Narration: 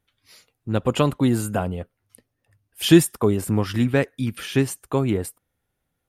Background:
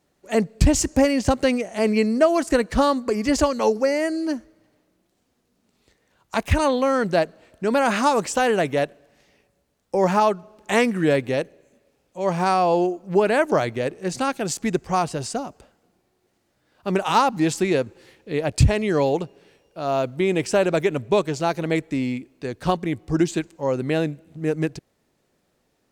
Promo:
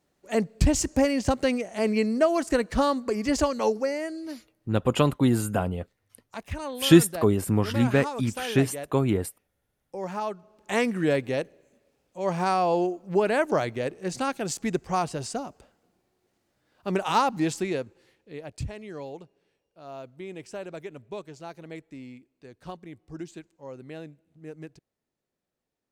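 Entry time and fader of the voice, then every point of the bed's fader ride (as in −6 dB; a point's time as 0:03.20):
4.00 s, −2.0 dB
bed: 0:03.68 −4.5 dB
0:04.49 −14.5 dB
0:10.07 −14.5 dB
0:10.90 −4.5 dB
0:17.39 −4.5 dB
0:18.64 −18 dB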